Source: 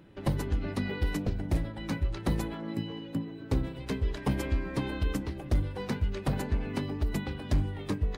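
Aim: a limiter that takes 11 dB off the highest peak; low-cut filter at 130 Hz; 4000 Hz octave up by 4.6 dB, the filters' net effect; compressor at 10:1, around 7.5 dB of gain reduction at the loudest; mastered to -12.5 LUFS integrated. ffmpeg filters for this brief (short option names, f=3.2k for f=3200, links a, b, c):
-af "highpass=130,equalizer=f=4k:t=o:g=6,acompressor=threshold=-33dB:ratio=10,volume=29dB,alimiter=limit=-3dB:level=0:latency=1"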